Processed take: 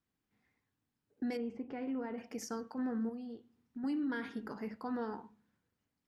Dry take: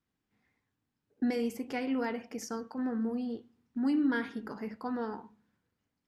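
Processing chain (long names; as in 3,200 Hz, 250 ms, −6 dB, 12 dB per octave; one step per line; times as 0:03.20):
0:03.09–0:03.84: downward compressor 2 to 1, threshold −45 dBFS, peak gain reduction 9 dB
brickwall limiter −27.5 dBFS, peak gain reduction 7 dB
0:01.37–0:02.18: head-to-tape spacing loss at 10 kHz 38 dB
level −2.5 dB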